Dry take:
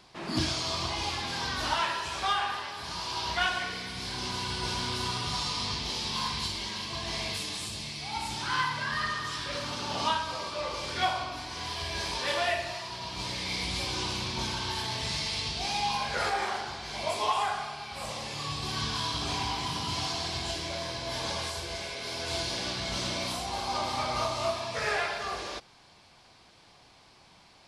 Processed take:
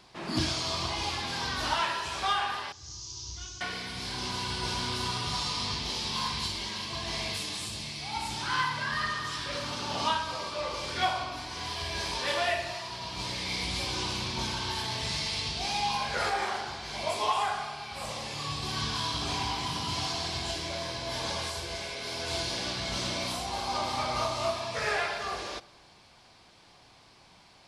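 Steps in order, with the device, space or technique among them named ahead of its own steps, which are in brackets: 2.72–3.61 s: FFT filter 110 Hz 0 dB, 220 Hz -20 dB, 320 Hz -8 dB, 650 Hz -29 dB, 1.2 kHz -22 dB, 1.8 kHz -28 dB, 4.4 kHz -10 dB, 6.5 kHz +8 dB, 9.5 kHz -25 dB; compressed reverb return (on a send at -12.5 dB: reverberation RT60 1.0 s, pre-delay 10 ms + compression, threshold -42 dBFS, peak gain reduction 17.5 dB)

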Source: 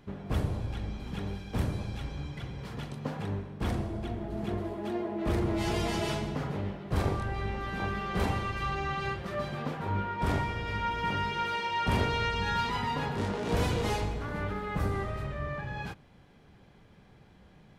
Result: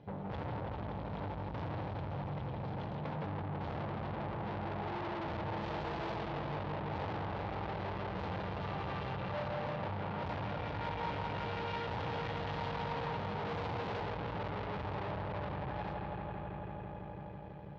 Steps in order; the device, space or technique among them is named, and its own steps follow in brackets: resonant low shelf 750 Hz +10.5 dB, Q 1.5; analogue delay pedal into a guitar amplifier (bucket-brigade echo 165 ms, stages 4096, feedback 83%, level -5 dB; valve stage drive 33 dB, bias 0.75; cabinet simulation 91–4400 Hz, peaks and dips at 240 Hz -9 dB, 380 Hz -8 dB, 870 Hz +7 dB); trim -2.5 dB

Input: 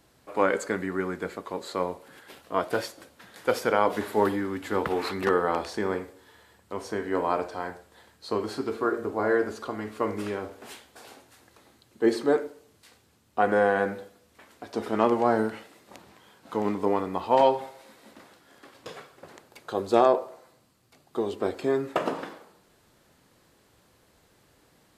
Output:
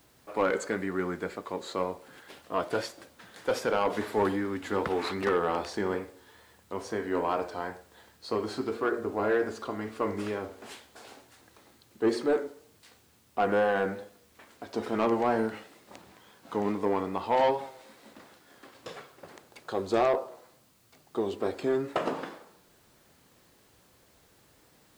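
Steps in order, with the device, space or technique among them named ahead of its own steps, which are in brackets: compact cassette (saturation -16.5 dBFS, distortion -13 dB; low-pass 9.6 kHz; wow and flutter; white noise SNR 35 dB); trim -1 dB

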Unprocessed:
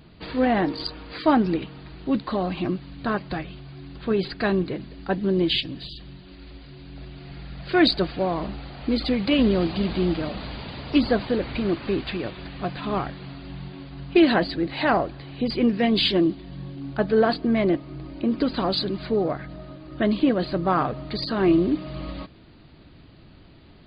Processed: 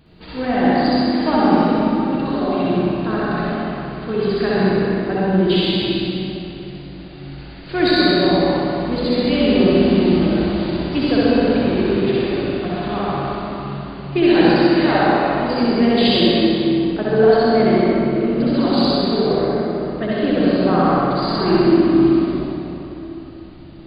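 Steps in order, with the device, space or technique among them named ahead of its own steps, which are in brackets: tunnel (flutter echo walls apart 10.9 m, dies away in 0.91 s; reverberation RT60 3.6 s, pre-delay 57 ms, DRR -6.5 dB); trim -3 dB

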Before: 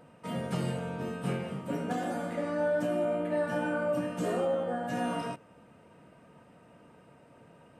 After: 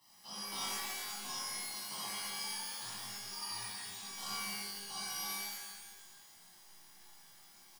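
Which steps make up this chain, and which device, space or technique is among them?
steep high-pass 1.9 kHz 48 dB/octave; split-band scrambled radio (four frequency bands reordered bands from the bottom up 3142; band-pass 360–3200 Hz; white noise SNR 18 dB); 3.58–4.05 s: low-pass 4.2 kHz; comb 1 ms, depth 82%; pitch-shifted reverb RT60 1.3 s, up +12 st, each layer -2 dB, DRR -11.5 dB; trim +1 dB

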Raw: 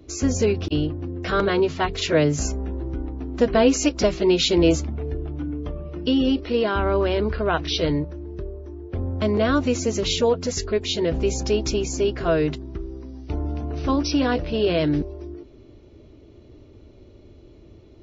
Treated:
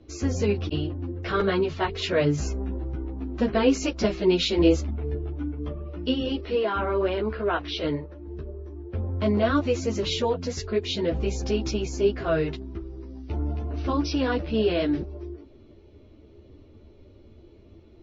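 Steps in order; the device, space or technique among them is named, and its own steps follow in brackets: 6.54–8.27 s: tone controls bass -7 dB, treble -7 dB; string-machine ensemble chorus (three-phase chorus; low-pass 5 kHz 12 dB/octave)

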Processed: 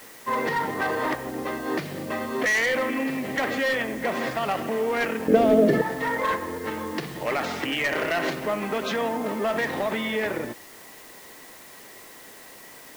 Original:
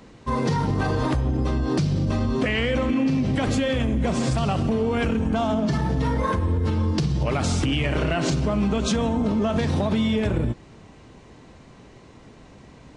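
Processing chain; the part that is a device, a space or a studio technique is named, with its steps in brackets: drive-through speaker (band-pass 420–2900 Hz; peaking EQ 1.9 kHz +11 dB 0.31 oct; hard clipper -21.5 dBFS, distortion -15 dB; white noise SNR 20 dB); 5.28–5.82 s: resonant low shelf 660 Hz +10 dB, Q 3; trim +2 dB

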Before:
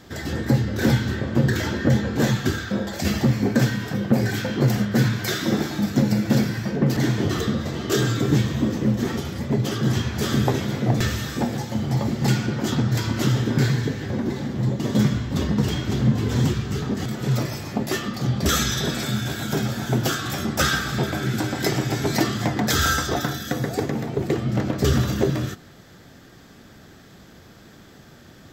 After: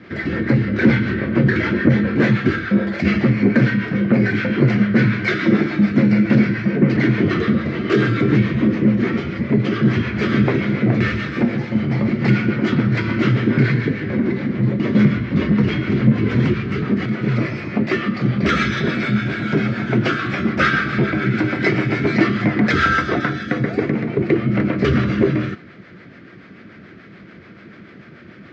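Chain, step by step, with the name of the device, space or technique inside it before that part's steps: guitar amplifier with harmonic tremolo (harmonic tremolo 6.9 Hz, depth 50%, crossover 450 Hz; saturation -12 dBFS, distortion -22 dB; cabinet simulation 99–3700 Hz, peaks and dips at 200 Hz +5 dB, 340 Hz +5 dB, 820 Hz -9 dB, 1.4 kHz +4 dB, 2.2 kHz +10 dB, 3.5 kHz -7 dB); trim +6.5 dB

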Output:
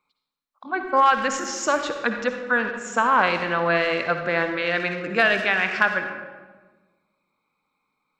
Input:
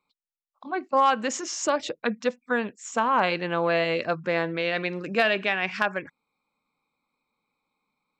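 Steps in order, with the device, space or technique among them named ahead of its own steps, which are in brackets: saturated reverb return (on a send at -4 dB: reverberation RT60 1.3 s, pre-delay 51 ms + saturation -22.5 dBFS, distortion -12 dB); on the sum: peaking EQ 1.5 kHz +7.5 dB 0.96 oct

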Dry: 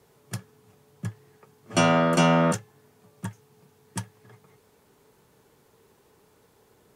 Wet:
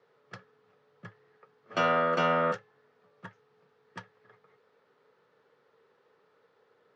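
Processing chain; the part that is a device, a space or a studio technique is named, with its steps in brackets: kitchen radio (cabinet simulation 200–4500 Hz, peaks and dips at 220 Hz -5 dB, 320 Hz -5 dB, 500 Hz +9 dB, 1.3 kHz +9 dB, 1.8 kHz +6 dB); trim -8.5 dB

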